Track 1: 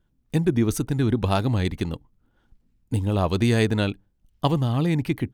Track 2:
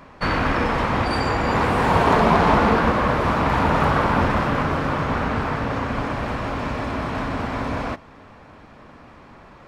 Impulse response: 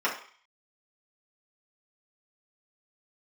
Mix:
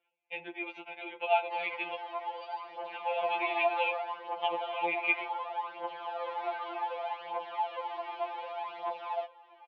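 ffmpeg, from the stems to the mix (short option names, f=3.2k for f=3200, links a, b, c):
-filter_complex "[0:a]acompressor=threshold=-24dB:ratio=6,lowpass=f=2.4k:t=q:w=9.3,volume=-2dB,asplit=2[a][b];[b]volume=-21.5dB[c];[1:a]aphaser=in_gain=1:out_gain=1:delay=3.4:decay=0.77:speed=0.66:type=triangular,adelay=1300,volume=-12.5dB,afade=t=in:st=5.67:d=0.64:silence=0.398107[d];[2:a]atrim=start_sample=2205[e];[c][e]afir=irnorm=-1:irlink=0[f];[a][d][f]amix=inputs=3:normalize=0,highpass=f=480:w=0.5412,highpass=f=480:w=1.3066,equalizer=f=620:t=q:w=4:g=8,equalizer=f=880:t=q:w=4:g=9,equalizer=f=1.3k:t=q:w=4:g=-10,equalizer=f=1.8k:t=q:w=4:g=-8,equalizer=f=3.2k:t=q:w=4:g=6,lowpass=f=3.4k:w=0.5412,lowpass=f=3.4k:w=1.3066,afftfilt=real='re*2.83*eq(mod(b,8),0)':imag='im*2.83*eq(mod(b,8),0)':win_size=2048:overlap=0.75"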